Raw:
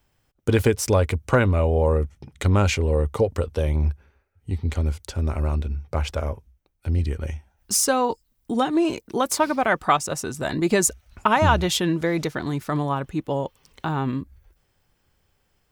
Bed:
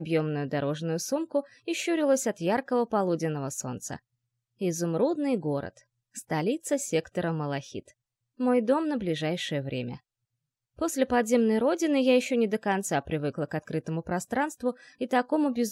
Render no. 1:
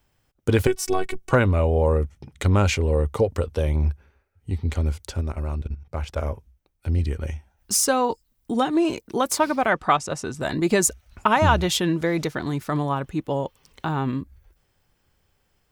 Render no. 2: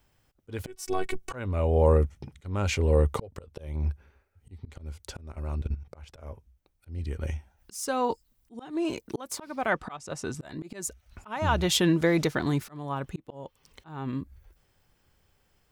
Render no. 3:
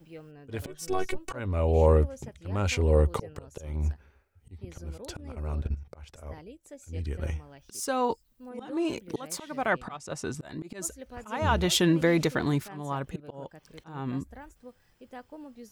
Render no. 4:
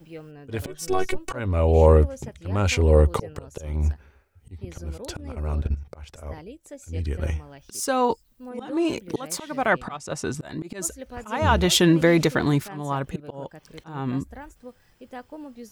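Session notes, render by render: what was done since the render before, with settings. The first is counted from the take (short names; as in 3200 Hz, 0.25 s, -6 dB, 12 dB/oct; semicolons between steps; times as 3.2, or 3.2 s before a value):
0.67–1.31 robotiser 375 Hz; 5.21–6.17 level quantiser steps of 13 dB; 9.7–10.41 air absorption 54 m
auto swell 0.567 s
add bed -19.5 dB
gain +5.5 dB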